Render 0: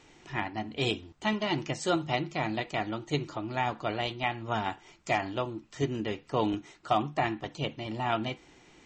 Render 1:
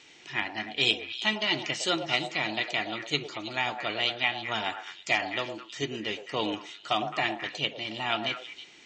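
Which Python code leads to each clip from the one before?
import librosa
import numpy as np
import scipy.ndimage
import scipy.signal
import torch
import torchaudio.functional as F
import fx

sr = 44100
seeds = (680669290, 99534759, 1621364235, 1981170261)

y = fx.weighting(x, sr, curve='D')
y = fx.echo_stepped(y, sr, ms=107, hz=610.0, octaves=1.4, feedback_pct=70, wet_db=-4.0)
y = y * librosa.db_to_amplitude(-2.5)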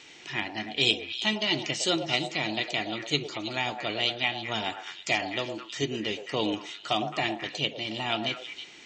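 y = fx.dynamic_eq(x, sr, hz=1400.0, q=0.7, threshold_db=-42.0, ratio=4.0, max_db=-8)
y = y * librosa.db_to_amplitude(4.0)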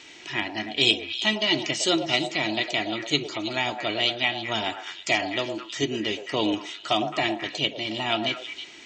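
y = x + 0.3 * np.pad(x, (int(3.1 * sr / 1000.0), 0))[:len(x)]
y = y * librosa.db_to_amplitude(3.0)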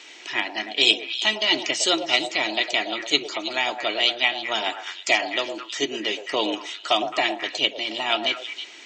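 y = scipy.signal.sosfilt(scipy.signal.butter(2, 360.0, 'highpass', fs=sr, output='sos'), x)
y = fx.hpss(y, sr, part='harmonic', gain_db=-4)
y = y * librosa.db_to_amplitude(4.5)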